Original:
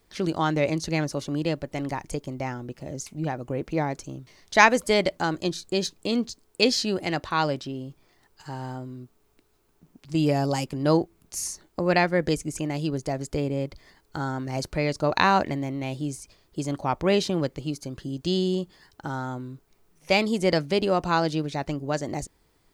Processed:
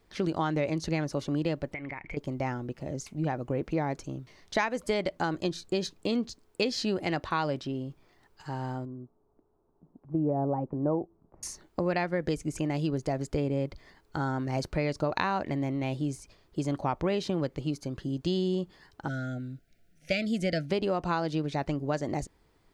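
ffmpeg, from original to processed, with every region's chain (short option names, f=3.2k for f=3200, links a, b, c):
-filter_complex "[0:a]asettb=1/sr,asplit=3[a][b][c];[a]atrim=end=1.744[d];[b]atrim=start=1.74:end=2.17,asetpts=PTS-STARTPTS,afade=t=in:d=0.004:c=qsin,afade=t=out:st=0.426:d=0.004:c=qsin,lowpass=f=2.2k:t=q:w=14,acompressor=threshold=-34dB:ratio=8:attack=3.2:release=140:knee=1:detection=peak[e];[c]atrim=start=2.166[f];[d][e]acrossfade=d=0.004:c1=hsin:c2=qsin[g];[g][f]acrossfade=d=0.004:c1=qsin:c2=hsin,asettb=1/sr,asplit=3[h][i][j];[h]atrim=end=8.854[k];[i]atrim=start=8.85:end=11.43,asetpts=PTS-STARTPTS,afade=t=in:d=0.004:c=qsin,afade=t=out:st=2.576:d=0.004:c=qsin,lowpass=f=1k:w=0.5412,lowpass=f=1k:w=1.3066,lowshelf=f=150:g=-6[l];[j]atrim=start=11.426[m];[k][l]acrossfade=d=0.004:c1=hsin:c2=qsin[n];[n][m]acrossfade=d=0.004:c1=qsin:c2=hsin,asettb=1/sr,asplit=3[o][p][q];[o]atrim=end=19.084[r];[p]atrim=start=19.08:end=20.7,asetpts=PTS-STARTPTS,afade=t=in:d=0.004:c=qsin,afade=t=out:st=1.616:d=0.004:c=qsin,asuperstop=centerf=1000:order=20:qfactor=1.6,equalizer=f=410:t=o:w=0.51:g=-11[s];[q]atrim=start=20.696[t];[r][s]acrossfade=d=0.004:c1=hsin:c2=qsin[u];[u][t]acrossfade=d=0.004:c1=qsin:c2=hsin,highshelf=f=5.1k:g=-10,acompressor=threshold=-24dB:ratio=10"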